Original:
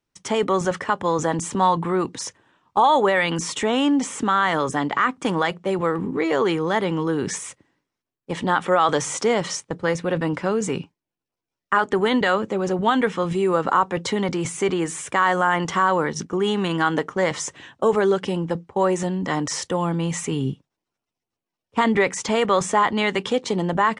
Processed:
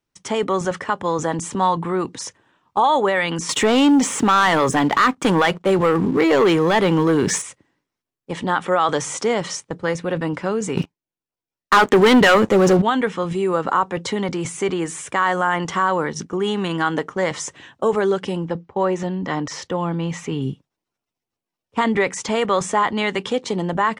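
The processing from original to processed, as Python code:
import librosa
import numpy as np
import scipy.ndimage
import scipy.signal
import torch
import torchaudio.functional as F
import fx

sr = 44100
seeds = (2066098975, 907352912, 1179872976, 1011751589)

y = fx.leveller(x, sr, passes=2, at=(3.49, 7.42))
y = fx.leveller(y, sr, passes=3, at=(10.77, 12.82))
y = fx.peak_eq(y, sr, hz=9000.0, db=-14.5, octaves=0.77, at=(18.48, 20.42))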